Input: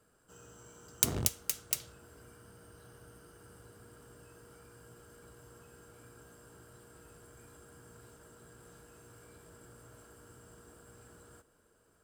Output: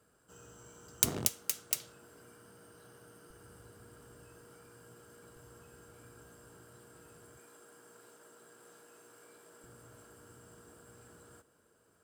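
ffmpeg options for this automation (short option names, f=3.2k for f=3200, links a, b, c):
-af "asetnsamples=n=441:p=0,asendcmd='1.09 highpass f 150;3.3 highpass f 40;4.41 highpass f 110;5.36 highpass f 44;6.53 highpass f 97;7.39 highpass f 310;9.64 highpass f 84',highpass=45"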